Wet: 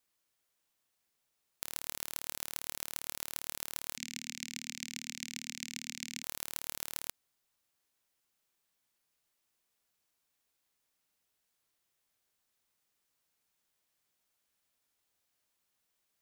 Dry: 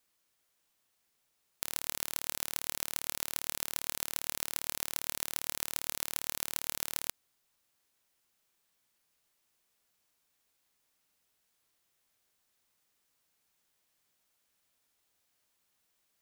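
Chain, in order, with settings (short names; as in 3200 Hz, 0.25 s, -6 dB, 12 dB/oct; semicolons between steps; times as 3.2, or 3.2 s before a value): 3.97–6.23 EQ curve 110 Hz 0 dB, 240 Hz +15 dB, 440 Hz -18 dB, 720 Hz -12 dB, 1300 Hz -14 dB, 2200 Hz +7 dB, 3300 Hz +2 dB, 7300 Hz +4 dB, 10000 Hz -14 dB; gain -4 dB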